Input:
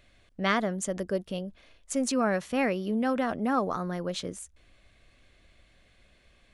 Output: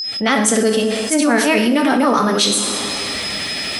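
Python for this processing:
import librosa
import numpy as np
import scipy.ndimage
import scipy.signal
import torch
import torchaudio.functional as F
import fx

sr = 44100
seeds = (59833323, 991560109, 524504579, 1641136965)

p1 = fx.fade_in_head(x, sr, length_s=0.87)
p2 = scipy.signal.sosfilt(scipy.signal.butter(2, 150.0, 'highpass', fs=sr, output='sos'), p1)
p3 = fx.high_shelf(p2, sr, hz=2700.0, db=10.0)
p4 = fx.notch(p3, sr, hz=7000.0, q=8.3)
p5 = fx.level_steps(p4, sr, step_db=11)
p6 = p4 + F.gain(torch.from_numpy(p5), -1.0).numpy()
p7 = fx.pitch_keep_formants(p6, sr, semitones=2.5)
p8 = p7 + 10.0 ** (-54.0 / 20.0) * np.sin(2.0 * np.pi * 5100.0 * np.arange(len(p7)) / sr)
p9 = fx.stretch_grains(p8, sr, factor=0.58, grain_ms=167.0)
p10 = fx.rev_double_slope(p9, sr, seeds[0], early_s=0.67, late_s=2.4, knee_db=-17, drr_db=5.0)
p11 = fx.env_flatten(p10, sr, amount_pct=70)
y = F.gain(torch.from_numpy(p11), 7.5).numpy()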